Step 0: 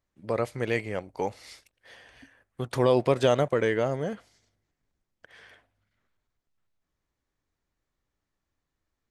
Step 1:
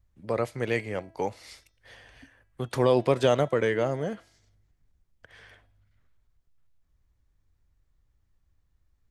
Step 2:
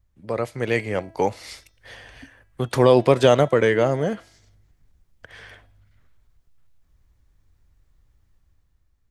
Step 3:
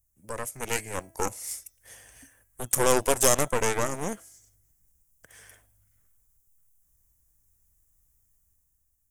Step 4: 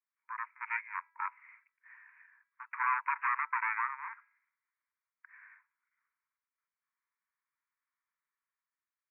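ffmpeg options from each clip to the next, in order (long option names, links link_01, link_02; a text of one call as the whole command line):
ffmpeg -i in.wav -filter_complex "[0:a]acrossover=split=110|1800[link_01][link_02][link_03];[link_01]acompressor=mode=upward:threshold=-51dB:ratio=2.5[link_04];[link_04][link_02][link_03]amix=inputs=3:normalize=0,bandreject=frequency=328.5:width_type=h:width=4,bandreject=frequency=657:width_type=h:width=4,bandreject=frequency=985.5:width_type=h:width=4,bandreject=frequency=1314:width_type=h:width=4,bandreject=frequency=1642.5:width_type=h:width=4,bandreject=frequency=1971:width_type=h:width=4,bandreject=frequency=2299.5:width_type=h:width=4,bandreject=frequency=2628:width_type=h:width=4,bandreject=frequency=2956.5:width_type=h:width=4,bandreject=frequency=3285:width_type=h:width=4,bandreject=frequency=3613.5:width_type=h:width=4,bandreject=frequency=3942:width_type=h:width=4,bandreject=frequency=4270.5:width_type=h:width=4,bandreject=frequency=4599:width_type=h:width=4,bandreject=frequency=4927.5:width_type=h:width=4,bandreject=frequency=5256:width_type=h:width=4,bandreject=frequency=5584.5:width_type=h:width=4,bandreject=frequency=5913:width_type=h:width=4,bandreject=frequency=6241.5:width_type=h:width=4,bandreject=frequency=6570:width_type=h:width=4" out.wav
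ffmpeg -i in.wav -af "dynaudnorm=framelen=140:gausssize=11:maxgain=7dB,volume=1.5dB" out.wav
ffmpeg -i in.wav -af "aeval=exprs='0.891*(cos(1*acos(clip(val(0)/0.891,-1,1)))-cos(1*PI/2))+0.0631*(cos(3*acos(clip(val(0)/0.891,-1,1)))-cos(3*PI/2))+0.178*(cos(8*acos(clip(val(0)/0.891,-1,1)))-cos(8*PI/2))':channel_layout=same,aexciter=amount=13.5:drive=6.5:freq=6300,volume=-9dB" out.wav
ffmpeg -i in.wav -af "asuperpass=centerf=1500:order=20:qfactor=1" out.wav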